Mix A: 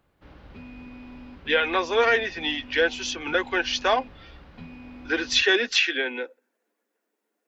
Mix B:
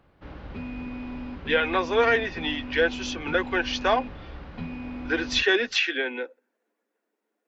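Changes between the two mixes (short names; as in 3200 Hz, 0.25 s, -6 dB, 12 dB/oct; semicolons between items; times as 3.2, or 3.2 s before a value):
background +7.5 dB; master: add high shelf 3800 Hz -7.5 dB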